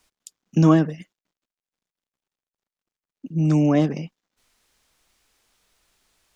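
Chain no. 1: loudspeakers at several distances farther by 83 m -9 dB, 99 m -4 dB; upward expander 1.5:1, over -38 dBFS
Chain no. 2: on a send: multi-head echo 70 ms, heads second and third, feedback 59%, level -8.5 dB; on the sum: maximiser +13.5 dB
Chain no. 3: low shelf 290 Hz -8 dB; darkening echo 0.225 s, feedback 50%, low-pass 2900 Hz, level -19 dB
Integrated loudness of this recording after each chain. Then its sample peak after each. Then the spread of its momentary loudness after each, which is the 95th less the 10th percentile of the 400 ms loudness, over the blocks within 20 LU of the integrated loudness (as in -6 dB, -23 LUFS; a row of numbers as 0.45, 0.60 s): -21.0, -11.5, -24.5 LUFS; -5.5, -1.0, -8.5 dBFS; 17, 19, 18 LU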